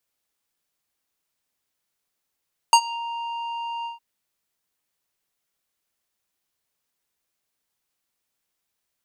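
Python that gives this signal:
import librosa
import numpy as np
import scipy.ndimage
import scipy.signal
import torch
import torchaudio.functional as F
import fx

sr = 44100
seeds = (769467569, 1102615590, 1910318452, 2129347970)

y = fx.sub_voice(sr, note=82, wave='square', cutoff_hz=2200.0, q=1.9, env_oct=2.0, env_s=0.26, attack_ms=1.4, decay_s=0.07, sustain_db=-21.0, release_s=0.14, note_s=1.12, slope=12)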